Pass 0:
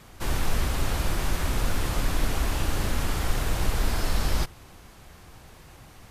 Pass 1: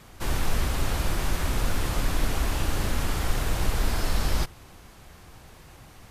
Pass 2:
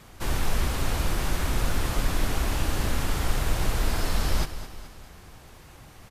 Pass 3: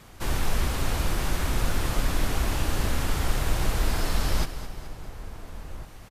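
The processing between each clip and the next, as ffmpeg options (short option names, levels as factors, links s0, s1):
-af anull
-af "aecho=1:1:214|428|642|856|1070:0.237|0.114|0.0546|0.0262|0.0126"
-filter_complex "[0:a]asplit=2[s0][s1];[s1]adelay=1399,volume=0.2,highshelf=f=4000:g=-31.5[s2];[s0][s2]amix=inputs=2:normalize=0"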